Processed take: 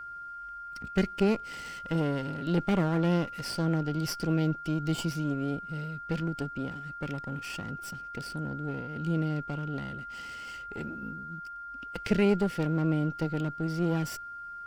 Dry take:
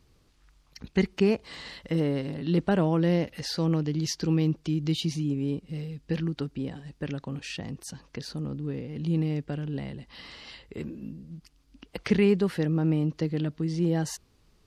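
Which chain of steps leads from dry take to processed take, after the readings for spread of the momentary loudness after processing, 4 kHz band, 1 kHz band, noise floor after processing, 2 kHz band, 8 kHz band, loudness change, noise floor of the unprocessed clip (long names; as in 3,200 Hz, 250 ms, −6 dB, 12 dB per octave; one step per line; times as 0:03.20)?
13 LU, −4.0 dB, +6.5 dB, −42 dBFS, +1.0 dB, −4.0 dB, −3.0 dB, −63 dBFS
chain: lower of the sound and its delayed copy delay 0.38 ms
steady tone 1,400 Hz −37 dBFS
level −2 dB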